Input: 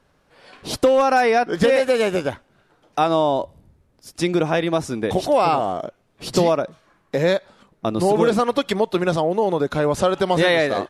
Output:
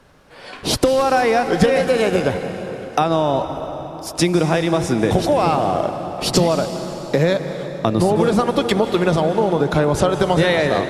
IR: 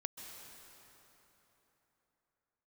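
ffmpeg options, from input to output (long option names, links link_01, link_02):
-filter_complex "[0:a]acrossover=split=140[link_01][link_02];[link_02]acompressor=threshold=-26dB:ratio=4[link_03];[link_01][link_03]amix=inputs=2:normalize=0,asplit=2[link_04][link_05];[1:a]atrim=start_sample=2205,asetrate=38367,aresample=44100[link_06];[link_05][link_06]afir=irnorm=-1:irlink=0,volume=4dB[link_07];[link_04][link_07]amix=inputs=2:normalize=0,volume=3.5dB"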